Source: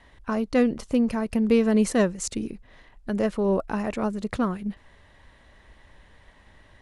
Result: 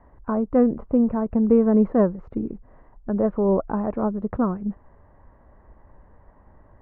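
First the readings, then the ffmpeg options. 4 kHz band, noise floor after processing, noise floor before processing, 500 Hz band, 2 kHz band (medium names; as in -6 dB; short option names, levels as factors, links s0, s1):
under -30 dB, -54 dBFS, -55 dBFS, +3.0 dB, -9.5 dB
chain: -af "lowpass=f=1200:w=0.5412,lowpass=f=1200:w=1.3066,volume=1.41"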